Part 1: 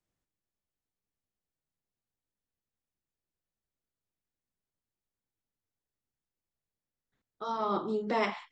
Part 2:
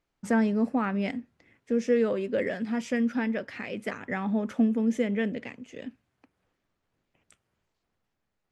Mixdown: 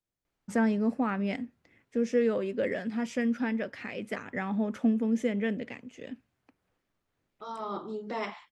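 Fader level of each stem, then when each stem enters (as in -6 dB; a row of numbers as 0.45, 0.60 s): -5.0, -2.0 dB; 0.00, 0.25 s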